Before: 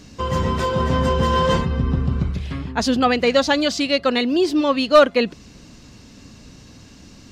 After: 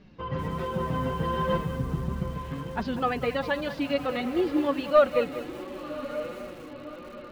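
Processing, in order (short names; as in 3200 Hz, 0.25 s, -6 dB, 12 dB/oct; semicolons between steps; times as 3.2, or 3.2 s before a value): Bessel low-pass 2400 Hz, order 4; diffused feedback echo 1.123 s, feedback 51%, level -11 dB; flange 1.4 Hz, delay 4.9 ms, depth 2.5 ms, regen +18%; lo-fi delay 0.194 s, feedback 35%, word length 6-bit, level -12 dB; gain -5.5 dB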